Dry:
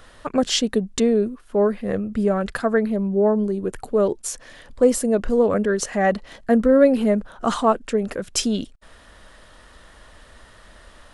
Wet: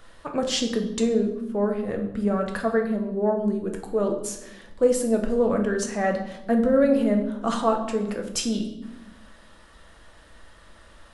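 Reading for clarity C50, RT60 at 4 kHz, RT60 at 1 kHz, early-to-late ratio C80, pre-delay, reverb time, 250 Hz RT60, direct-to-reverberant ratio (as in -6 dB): 8.0 dB, 0.75 s, 0.85 s, 11.0 dB, 6 ms, 0.95 s, 1.4 s, 2.5 dB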